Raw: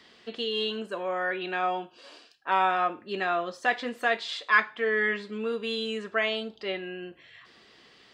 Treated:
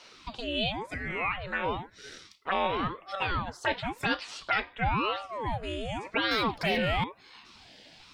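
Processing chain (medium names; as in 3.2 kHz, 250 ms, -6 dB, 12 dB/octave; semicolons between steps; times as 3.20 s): 0.90–1.38 s: resonant low shelf 580 Hz -6 dB, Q 1.5; in parallel at -2 dB: compression, threshold -40 dBFS, peak gain reduction 22 dB; 6.31–7.04 s: on the sum: overdrive pedal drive 27 dB, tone 2 kHz, clips at -17 dBFS; touch-sensitive phaser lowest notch 180 Hz, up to 1.4 kHz, full sweep at -22 dBFS; ring modulator with a swept carrier 560 Hz, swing 75%, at 0.96 Hz; trim +3.5 dB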